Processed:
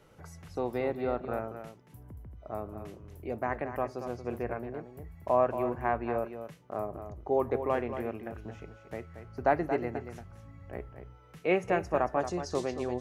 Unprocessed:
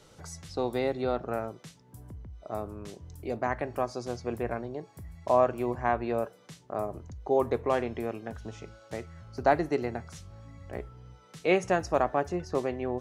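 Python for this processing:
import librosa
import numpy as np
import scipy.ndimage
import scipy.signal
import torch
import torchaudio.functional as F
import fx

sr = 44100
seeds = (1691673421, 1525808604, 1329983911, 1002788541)

y = fx.band_shelf(x, sr, hz=5600.0, db=fx.steps((0.0, -10.0), (12.19, 8.0)), octaves=1.7)
y = y + 10.0 ** (-9.5 / 20.0) * np.pad(y, (int(229 * sr / 1000.0), 0))[:len(y)]
y = y * 10.0 ** (-2.5 / 20.0)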